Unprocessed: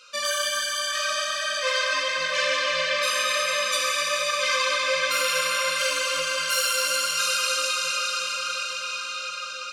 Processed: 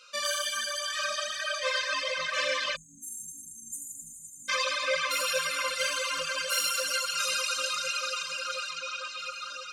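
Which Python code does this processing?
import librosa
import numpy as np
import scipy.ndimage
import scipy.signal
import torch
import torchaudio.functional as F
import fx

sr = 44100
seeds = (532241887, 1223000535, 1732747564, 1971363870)

y = fx.lowpass(x, sr, hz=8400.0, slope=12, at=(8.7, 9.17), fade=0.02)
y = fx.echo_split(y, sr, split_hz=2500.0, low_ms=448, high_ms=82, feedback_pct=52, wet_db=-5)
y = fx.dereverb_blind(y, sr, rt60_s=1.8)
y = fx.spec_erase(y, sr, start_s=2.76, length_s=1.73, low_hz=280.0, high_hz=6300.0)
y = y * 10.0 ** (-3.5 / 20.0)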